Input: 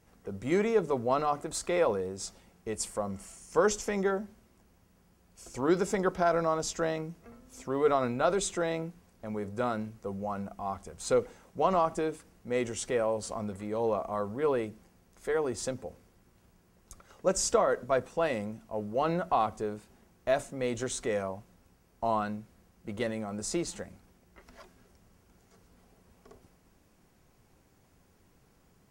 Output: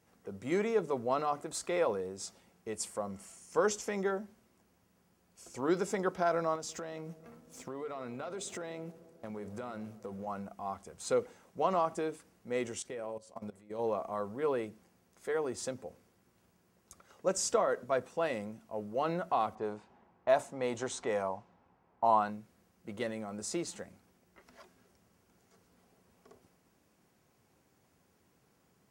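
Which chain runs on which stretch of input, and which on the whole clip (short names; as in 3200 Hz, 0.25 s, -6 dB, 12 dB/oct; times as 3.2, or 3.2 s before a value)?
6.55–10.27 sample leveller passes 1 + compressor 16:1, threshold -33 dBFS + dark delay 0.137 s, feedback 74%, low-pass 830 Hz, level -16.5 dB
12.79–13.79 bell 1200 Hz -3.5 dB 0.6 oct + de-hum 91.52 Hz, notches 15 + level quantiser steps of 18 dB
19.55–22.3 low-pass opened by the level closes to 2000 Hz, open at -27 dBFS + bell 880 Hz +10 dB 0.75 oct
whole clip: HPF 67 Hz; low shelf 100 Hz -8 dB; gain -3.5 dB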